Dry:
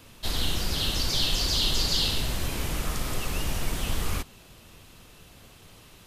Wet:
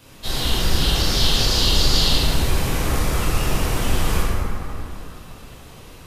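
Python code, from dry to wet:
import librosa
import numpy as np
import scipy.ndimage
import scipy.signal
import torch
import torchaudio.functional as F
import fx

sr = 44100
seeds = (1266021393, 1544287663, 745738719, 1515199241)

y = fx.rev_plate(x, sr, seeds[0], rt60_s=3.2, hf_ratio=0.35, predelay_ms=0, drr_db=-8.5)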